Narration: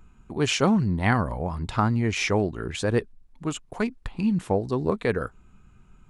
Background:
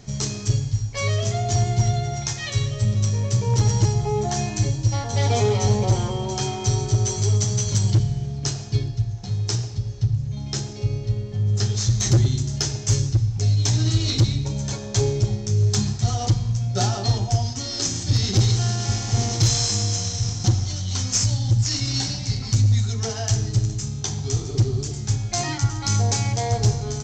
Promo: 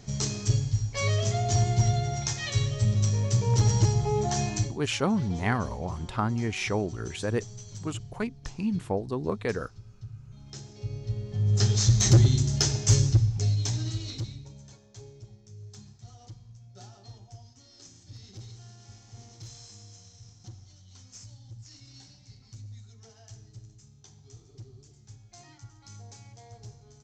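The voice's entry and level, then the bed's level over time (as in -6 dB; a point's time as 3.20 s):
4.40 s, -5.0 dB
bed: 4.58 s -3.5 dB
4.80 s -21 dB
10.19 s -21 dB
11.66 s -0.5 dB
13.11 s -0.5 dB
14.94 s -26.5 dB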